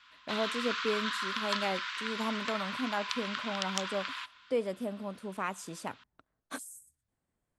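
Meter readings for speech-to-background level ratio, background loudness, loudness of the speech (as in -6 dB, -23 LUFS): -1.5 dB, -35.5 LUFS, -37.0 LUFS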